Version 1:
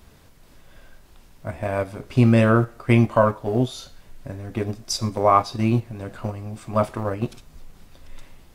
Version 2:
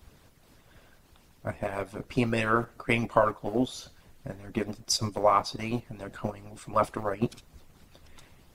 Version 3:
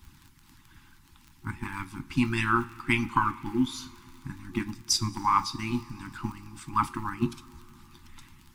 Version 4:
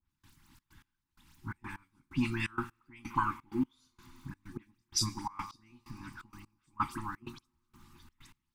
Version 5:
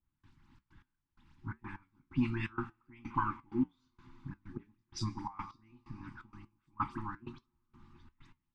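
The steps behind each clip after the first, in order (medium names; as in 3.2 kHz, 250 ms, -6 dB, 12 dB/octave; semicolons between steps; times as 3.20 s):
harmonic-percussive split harmonic -17 dB
crackle 30 per s -40 dBFS; two-slope reverb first 0.27 s, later 3.8 s, from -18 dB, DRR 11.5 dB; FFT band-reject 360–800 Hz; trim +1.5 dB
phase dispersion highs, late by 78 ms, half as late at 2.9 kHz; trance gate "..xxx.x." 128 bpm -24 dB; trim -5.5 dB
flange 1.2 Hz, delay 5.8 ms, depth 3.2 ms, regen -74%; tape spacing loss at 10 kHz 26 dB; trim +4.5 dB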